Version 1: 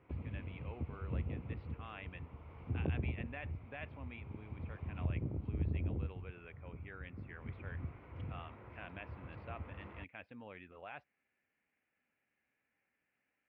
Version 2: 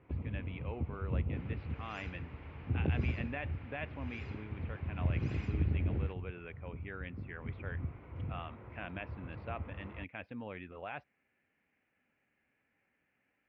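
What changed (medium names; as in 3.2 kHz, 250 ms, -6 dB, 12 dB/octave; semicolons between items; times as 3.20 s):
speech +5.0 dB; second sound: unmuted; reverb: on, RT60 2.5 s; master: add bass shelf 450 Hz +4.5 dB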